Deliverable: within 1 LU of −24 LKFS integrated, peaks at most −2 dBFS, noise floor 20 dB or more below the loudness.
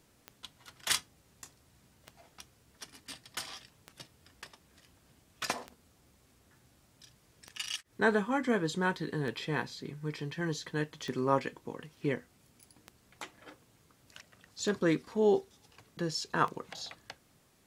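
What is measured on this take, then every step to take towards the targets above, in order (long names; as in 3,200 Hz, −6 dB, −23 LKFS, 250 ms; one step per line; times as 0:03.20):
number of clicks 10; integrated loudness −33.5 LKFS; sample peak −12.0 dBFS; target loudness −24.0 LKFS
→ click removal
level +9.5 dB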